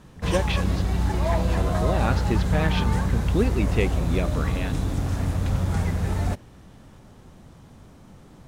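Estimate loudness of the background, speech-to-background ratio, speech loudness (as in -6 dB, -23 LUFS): -25.5 LUFS, -3.5 dB, -29.0 LUFS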